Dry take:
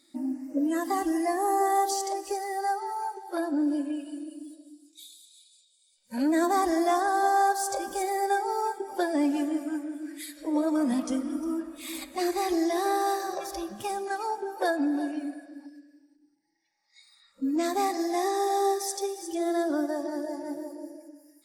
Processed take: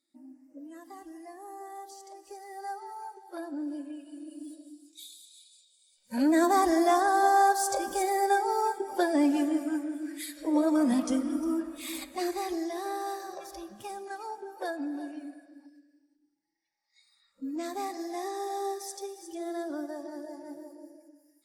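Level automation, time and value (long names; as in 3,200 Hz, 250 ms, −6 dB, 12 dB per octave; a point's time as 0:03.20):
0:01.97 −19 dB
0:02.72 −9 dB
0:04.06 −9 dB
0:04.49 +1 dB
0:11.79 +1 dB
0:12.71 −8 dB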